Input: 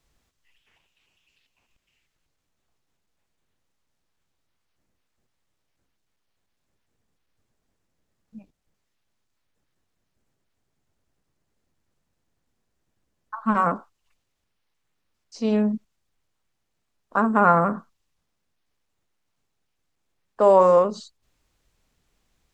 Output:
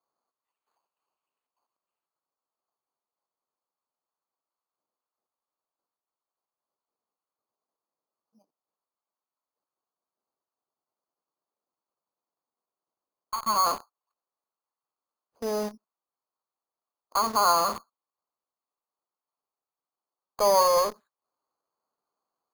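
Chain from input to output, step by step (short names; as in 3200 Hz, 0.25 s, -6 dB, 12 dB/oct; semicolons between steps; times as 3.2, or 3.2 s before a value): HPF 520 Hz 12 dB/oct; resonant high shelf 1500 Hz -9 dB, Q 3; in parallel at -8 dB: fuzz box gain 40 dB, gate -35 dBFS; on the sum: air absorption 480 m; careless resampling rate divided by 8×, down none, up hold; gain -7 dB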